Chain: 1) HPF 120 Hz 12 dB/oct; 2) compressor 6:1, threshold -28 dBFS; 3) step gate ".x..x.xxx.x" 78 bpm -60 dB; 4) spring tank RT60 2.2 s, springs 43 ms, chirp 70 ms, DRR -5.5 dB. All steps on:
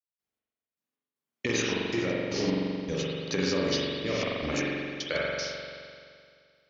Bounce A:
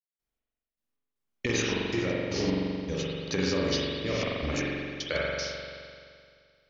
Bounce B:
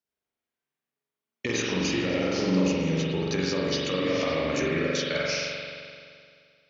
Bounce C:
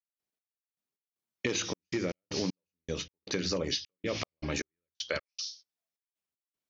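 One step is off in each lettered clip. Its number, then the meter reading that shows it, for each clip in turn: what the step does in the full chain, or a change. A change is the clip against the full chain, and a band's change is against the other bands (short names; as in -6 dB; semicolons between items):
1, 125 Hz band +2.5 dB; 3, 125 Hz band +2.0 dB; 4, crest factor change +4.0 dB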